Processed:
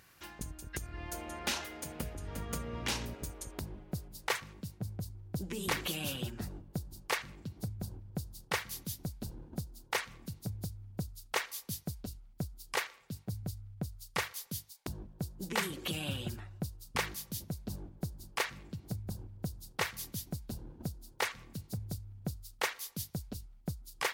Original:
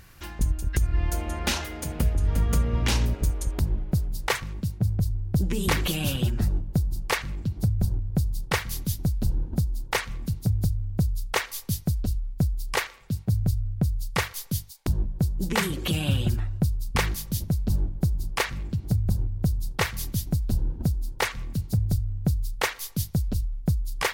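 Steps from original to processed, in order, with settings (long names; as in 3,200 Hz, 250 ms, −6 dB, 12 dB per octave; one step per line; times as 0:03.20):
high-pass filter 290 Hz 6 dB per octave
level −7 dB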